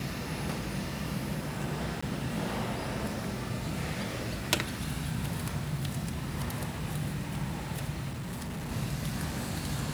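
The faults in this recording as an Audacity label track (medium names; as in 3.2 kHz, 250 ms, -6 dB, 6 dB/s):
2.010000	2.020000	dropout 15 ms
8.090000	8.720000	clipped -34 dBFS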